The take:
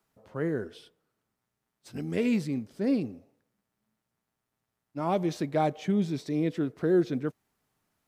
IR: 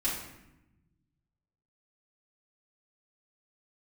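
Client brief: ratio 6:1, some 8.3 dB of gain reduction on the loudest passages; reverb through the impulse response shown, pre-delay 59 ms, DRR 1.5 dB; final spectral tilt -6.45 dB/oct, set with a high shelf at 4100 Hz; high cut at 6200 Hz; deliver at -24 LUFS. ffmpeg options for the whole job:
-filter_complex "[0:a]lowpass=6.2k,highshelf=f=4.1k:g=-3,acompressor=threshold=-28dB:ratio=6,asplit=2[a][b];[1:a]atrim=start_sample=2205,adelay=59[c];[b][c]afir=irnorm=-1:irlink=0,volume=-8dB[d];[a][d]amix=inputs=2:normalize=0,volume=7.5dB"

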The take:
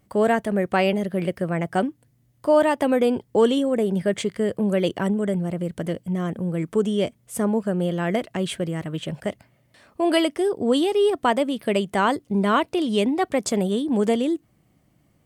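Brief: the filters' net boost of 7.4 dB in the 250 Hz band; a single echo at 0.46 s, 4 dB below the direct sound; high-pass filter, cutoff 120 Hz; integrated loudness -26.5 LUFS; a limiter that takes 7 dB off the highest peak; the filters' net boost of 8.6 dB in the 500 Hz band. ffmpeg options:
-af "highpass=120,equalizer=f=250:t=o:g=7.5,equalizer=f=500:t=o:g=8.5,alimiter=limit=-6.5dB:level=0:latency=1,aecho=1:1:460:0.631,volume=-10.5dB"

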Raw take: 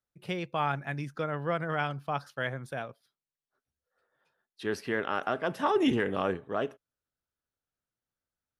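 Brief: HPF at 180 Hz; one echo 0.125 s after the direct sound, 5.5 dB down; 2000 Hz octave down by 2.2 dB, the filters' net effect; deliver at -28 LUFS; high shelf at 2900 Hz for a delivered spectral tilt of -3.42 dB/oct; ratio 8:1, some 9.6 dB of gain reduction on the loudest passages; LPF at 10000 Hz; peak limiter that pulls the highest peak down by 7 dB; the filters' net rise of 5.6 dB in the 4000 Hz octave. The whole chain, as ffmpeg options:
-af "highpass=180,lowpass=10k,equalizer=f=2k:t=o:g=-6,highshelf=f=2.9k:g=3.5,equalizer=f=4k:t=o:g=8,acompressor=threshold=-31dB:ratio=8,alimiter=level_in=3dB:limit=-24dB:level=0:latency=1,volume=-3dB,aecho=1:1:125:0.531,volume=10.5dB"

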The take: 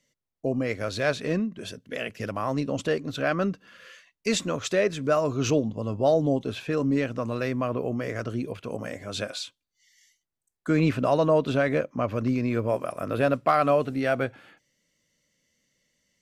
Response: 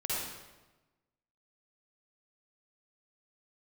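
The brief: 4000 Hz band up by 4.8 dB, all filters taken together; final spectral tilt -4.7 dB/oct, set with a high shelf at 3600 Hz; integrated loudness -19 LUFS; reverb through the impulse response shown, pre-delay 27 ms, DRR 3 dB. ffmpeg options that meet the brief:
-filter_complex "[0:a]highshelf=f=3.6k:g=-4.5,equalizer=f=4k:t=o:g=8.5,asplit=2[a][b];[1:a]atrim=start_sample=2205,adelay=27[c];[b][c]afir=irnorm=-1:irlink=0,volume=-8.5dB[d];[a][d]amix=inputs=2:normalize=0,volume=5.5dB"

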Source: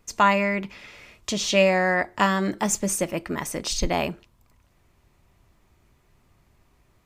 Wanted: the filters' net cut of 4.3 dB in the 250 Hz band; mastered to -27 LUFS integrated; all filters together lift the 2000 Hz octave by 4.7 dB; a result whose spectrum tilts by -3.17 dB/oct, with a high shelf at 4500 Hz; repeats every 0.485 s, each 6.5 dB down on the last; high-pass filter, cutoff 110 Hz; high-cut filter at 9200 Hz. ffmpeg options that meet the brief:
-af "highpass=110,lowpass=9.2k,equalizer=f=250:t=o:g=-6,equalizer=f=2k:t=o:g=7,highshelf=f=4.5k:g=-7.5,aecho=1:1:485|970|1455|1940|2425|2910:0.473|0.222|0.105|0.0491|0.0231|0.0109,volume=-4.5dB"

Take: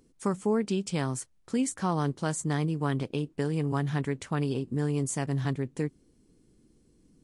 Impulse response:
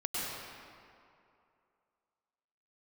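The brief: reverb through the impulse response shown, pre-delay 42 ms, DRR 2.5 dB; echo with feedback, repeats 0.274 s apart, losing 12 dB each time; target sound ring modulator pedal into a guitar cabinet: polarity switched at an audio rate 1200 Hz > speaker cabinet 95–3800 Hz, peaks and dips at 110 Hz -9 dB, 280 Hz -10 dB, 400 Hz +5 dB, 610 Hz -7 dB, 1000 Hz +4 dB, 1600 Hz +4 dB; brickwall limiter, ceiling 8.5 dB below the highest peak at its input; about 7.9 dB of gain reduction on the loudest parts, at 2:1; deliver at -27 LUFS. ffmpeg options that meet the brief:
-filter_complex "[0:a]acompressor=threshold=-38dB:ratio=2,alimiter=level_in=7dB:limit=-24dB:level=0:latency=1,volume=-7dB,aecho=1:1:274|548|822:0.251|0.0628|0.0157,asplit=2[a][b];[1:a]atrim=start_sample=2205,adelay=42[c];[b][c]afir=irnorm=-1:irlink=0,volume=-8.5dB[d];[a][d]amix=inputs=2:normalize=0,aeval=exprs='val(0)*sgn(sin(2*PI*1200*n/s))':c=same,highpass=95,equalizer=f=110:t=q:w=4:g=-9,equalizer=f=280:t=q:w=4:g=-10,equalizer=f=400:t=q:w=4:g=5,equalizer=f=610:t=q:w=4:g=-7,equalizer=f=1k:t=q:w=4:g=4,equalizer=f=1.6k:t=q:w=4:g=4,lowpass=f=3.8k:w=0.5412,lowpass=f=3.8k:w=1.3066,volume=8.5dB"

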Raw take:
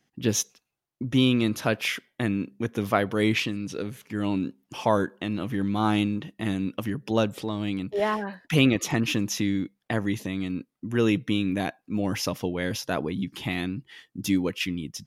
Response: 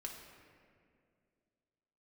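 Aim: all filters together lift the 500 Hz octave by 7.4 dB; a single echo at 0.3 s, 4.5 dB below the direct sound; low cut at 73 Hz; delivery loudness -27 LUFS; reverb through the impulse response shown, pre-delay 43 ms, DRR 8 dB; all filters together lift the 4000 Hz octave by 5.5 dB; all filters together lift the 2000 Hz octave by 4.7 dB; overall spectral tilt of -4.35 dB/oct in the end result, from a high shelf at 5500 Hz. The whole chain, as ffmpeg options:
-filter_complex "[0:a]highpass=73,equalizer=f=500:t=o:g=9,equalizer=f=2k:t=o:g=3.5,equalizer=f=4k:t=o:g=4,highshelf=f=5.5k:g=5,aecho=1:1:300:0.596,asplit=2[a][b];[1:a]atrim=start_sample=2205,adelay=43[c];[b][c]afir=irnorm=-1:irlink=0,volume=-5.5dB[d];[a][d]amix=inputs=2:normalize=0,volume=-5.5dB"

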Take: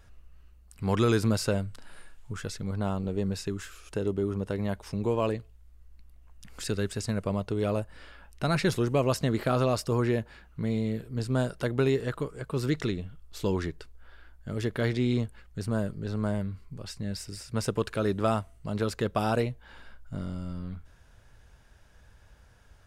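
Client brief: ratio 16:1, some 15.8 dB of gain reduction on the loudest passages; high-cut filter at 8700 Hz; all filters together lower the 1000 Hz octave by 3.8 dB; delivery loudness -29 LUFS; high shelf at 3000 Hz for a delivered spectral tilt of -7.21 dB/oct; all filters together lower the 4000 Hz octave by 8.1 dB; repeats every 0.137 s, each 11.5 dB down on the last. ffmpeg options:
-af "lowpass=8.7k,equalizer=f=1k:t=o:g=-4,highshelf=f=3k:g=-8.5,equalizer=f=4k:t=o:g=-3,acompressor=threshold=-37dB:ratio=16,aecho=1:1:137|274|411:0.266|0.0718|0.0194,volume=14dB"

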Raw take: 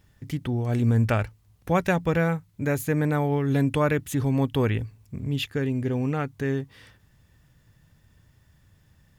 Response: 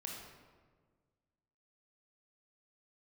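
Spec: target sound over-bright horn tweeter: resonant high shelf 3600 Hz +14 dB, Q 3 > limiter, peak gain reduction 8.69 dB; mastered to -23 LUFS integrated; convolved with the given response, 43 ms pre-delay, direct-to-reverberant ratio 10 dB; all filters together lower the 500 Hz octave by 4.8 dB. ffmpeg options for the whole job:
-filter_complex "[0:a]equalizer=f=500:t=o:g=-5.5,asplit=2[a][b];[1:a]atrim=start_sample=2205,adelay=43[c];[b][c]afir=irnorm=-1:irlink=0,volume=-8.5dB[d];[a][d]amix=inputs=2:normalize=0,highshelf=f=3.6k:t=q:w=3:g=14,volume=4.5dB,alimiter=limit=-11.5dB:level=0:latency=1"

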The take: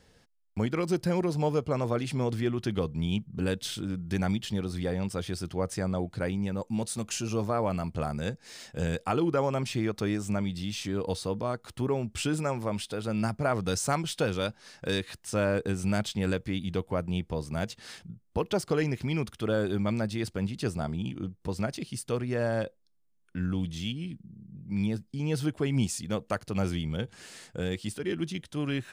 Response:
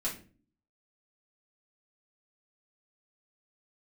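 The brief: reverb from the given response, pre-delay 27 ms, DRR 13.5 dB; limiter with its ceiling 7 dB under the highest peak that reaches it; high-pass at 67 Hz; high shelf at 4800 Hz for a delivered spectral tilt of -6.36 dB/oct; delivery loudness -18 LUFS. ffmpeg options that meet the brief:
-filter_complex "[0:a]highpass=67,highshelf=f=4.8k:g=-8.5,alimiter=limit=-21.5dB:level=0:latency=1,asplit=2[a][b];[1:a]atrim=start_sample=2205,adelay=27[c];[b][c]afir=irnorm=-1:irlink=0,volume=-17dB[d];[a][d]amix=inputs=2:normalize=0,volume=15dB"

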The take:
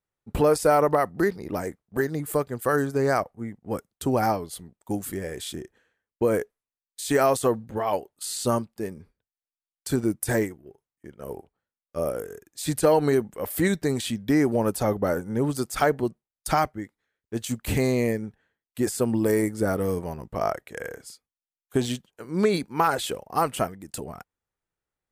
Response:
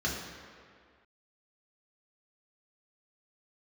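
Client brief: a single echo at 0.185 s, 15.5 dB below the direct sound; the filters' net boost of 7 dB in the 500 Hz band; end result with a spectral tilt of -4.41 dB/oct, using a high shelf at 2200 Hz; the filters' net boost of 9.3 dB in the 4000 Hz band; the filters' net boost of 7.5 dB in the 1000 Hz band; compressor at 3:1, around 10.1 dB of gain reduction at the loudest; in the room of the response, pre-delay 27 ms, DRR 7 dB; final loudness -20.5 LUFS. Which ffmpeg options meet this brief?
-filter_complex "[0:a]equalizer=f=500:t=o:g=6.5,equalizer=f=1k:t=o:g=6,highshelf=f=2.2k:g=7.5,equalizer=f=4k:t=o:g=4,acompressor=threshold=-22dB:ratio=3,aecho=1:1:185:0.168,asplit=2[a][b];[1:a]atrim=start_sample=2205,adelay=27[c];[b][c]afir=irnorm=-1:irlink=0,volume=-15dB[d];[a][d]amix=inputs=2:normalize=0,volume=4.5dB"

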